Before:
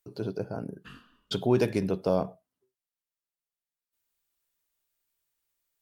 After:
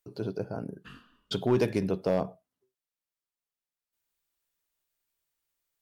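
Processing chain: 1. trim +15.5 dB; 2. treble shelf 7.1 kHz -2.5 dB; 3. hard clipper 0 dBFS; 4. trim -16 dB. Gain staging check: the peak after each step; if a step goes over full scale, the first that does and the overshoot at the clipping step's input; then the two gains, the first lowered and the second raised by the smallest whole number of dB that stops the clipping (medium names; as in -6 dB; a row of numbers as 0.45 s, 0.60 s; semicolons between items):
+4.0 dBFS, +4.0 dBFS, 0.0 dBFS, -16.0 dBFS; step 1, 4.0 dB; step 1 +11.5 dB, step 4 -12 dB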